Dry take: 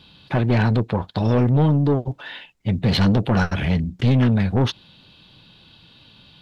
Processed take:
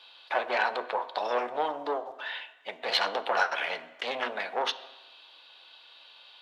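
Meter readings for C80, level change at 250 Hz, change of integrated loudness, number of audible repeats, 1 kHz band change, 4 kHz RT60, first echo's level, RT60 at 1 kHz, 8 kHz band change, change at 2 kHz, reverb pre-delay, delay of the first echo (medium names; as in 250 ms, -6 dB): 16.0 dB, -27.0 dB, -10.5 dB, no echo, 0.0 dB, 1.1 s, no echo, 1.1 s, no reading, -0.5 dB, 3 ms, no echo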